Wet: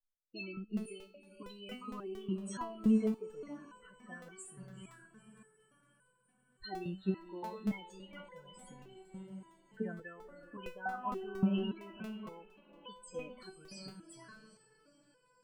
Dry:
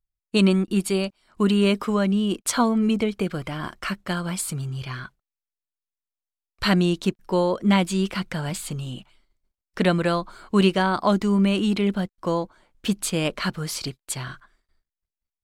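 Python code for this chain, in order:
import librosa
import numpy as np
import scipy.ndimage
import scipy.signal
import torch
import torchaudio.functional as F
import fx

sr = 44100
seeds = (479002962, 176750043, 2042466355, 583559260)

y = fx.spec_topn(x, sr, count=16)
y = fx.echo_diffused(y, sr, ms=468, feedback_pct=59, wet_db=-13.0)
y = fx.buffer_crackle(y, sr, first_s=0.77, period_s=0.23, block=64, kind='repeat')
y = fx.resonator_held(y, sr, hz=3.5, low_hz=190.0, high_hz=500.0)
y = y * librosa.db_to_amplitude(-3.0)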